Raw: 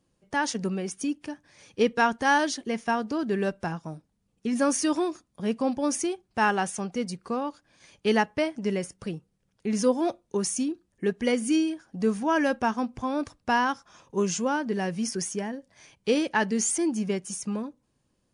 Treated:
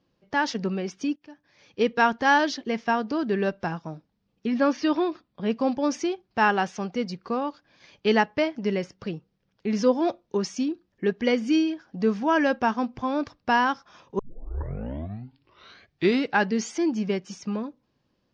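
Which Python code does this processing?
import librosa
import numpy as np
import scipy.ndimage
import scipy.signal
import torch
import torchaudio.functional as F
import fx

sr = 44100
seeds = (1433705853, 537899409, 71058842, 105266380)

y = fx.lowpass(x, sr, hz=4600.0, slope=24, at=(4.46, 5.5))
y = fx.edit(y, sr, fx.fade_in_from(start_s=1.16, length_s=0.91, floor_db=-18.5),
    fx.tape_start(start_s=14.19, length_s=2.32), tone=tone)
y = scipy.signal.sosfilt(scipy.signal.butter(6, 5400.0, 'lowpass', fs=sr, output='sos'), y)
y = fx.low_shelf(y, sr, hz=93.0, db=-7.5)
y = y * librosa.db_to_amplitude(2.5)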